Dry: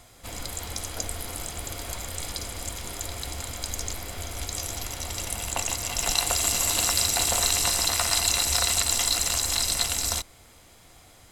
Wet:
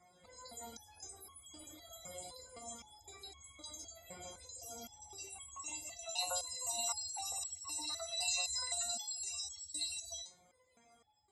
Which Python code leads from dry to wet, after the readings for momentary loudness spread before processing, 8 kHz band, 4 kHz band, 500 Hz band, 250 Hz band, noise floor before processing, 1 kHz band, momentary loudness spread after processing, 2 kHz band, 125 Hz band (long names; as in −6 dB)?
13 LU, −15.0 dB, −15.0 dB, −14.0 dB, −18.5 dB, −53 dBFS, −15.0 dB, 16 LU, −18.0 dB, −28.0 dB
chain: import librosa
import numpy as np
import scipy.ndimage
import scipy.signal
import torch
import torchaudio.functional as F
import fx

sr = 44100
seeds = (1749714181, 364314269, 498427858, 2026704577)

y = scipy.signal.sosfilt(scipy.signal.butter(2, 92.0, 'highpass', fs=sr, output='sos'), x)
y = fx.room_early_taps(y, sr, ms=(13, 57), db=(-13.0, -16.0))
y = fx.spec_topn(y, sr, count=64)
y = fx.resonator_held(y, sr, hz=3.9, low_hz=180.0, high_hz=1100.0)
y = y * 10.0 ** (2.0 / 20.0)